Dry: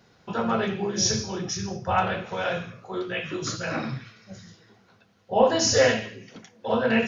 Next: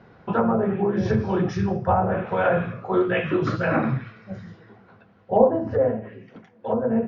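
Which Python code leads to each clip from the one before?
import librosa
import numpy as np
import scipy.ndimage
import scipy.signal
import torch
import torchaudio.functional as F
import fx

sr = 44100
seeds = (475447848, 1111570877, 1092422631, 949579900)

y = scipy.signal.sosfilt(scipy.signal.butter(2, 1700.0, 'lowpass', fs=sr, output='sos'), x)
y = fx.env_lowpass_down(y, sr, base_hz=660.0, full_db=-20.0)
y = fx.rider(y, sr, range_db=10, speed_s=0.5)
y = y * 10.0 ** (5.5 / 20.0)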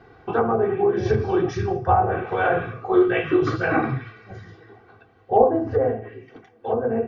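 y = x + 0.78 * np.pad(x, (int(2.6 * sr / 1000.0), 0))[:len(x)]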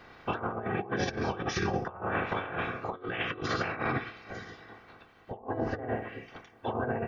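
y = fx.spec_clip(x, sr, under_db=18)
y = fx.over_compress(y, sr, threshold_db=-25.0, ratio=-0.5)
y = y * 10.0 ** (-7.0 / 20.0)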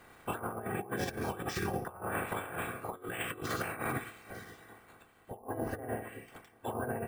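y = np.repeat(x[::4], 4)[:len(x)]
y = y * 10.0 ** (-4.5 / 20.0)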